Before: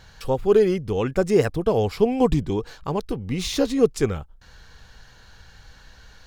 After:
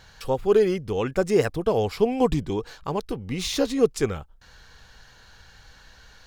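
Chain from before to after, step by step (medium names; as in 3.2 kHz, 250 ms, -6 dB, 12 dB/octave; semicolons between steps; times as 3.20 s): bass shelf 350 Hz -4.5 dB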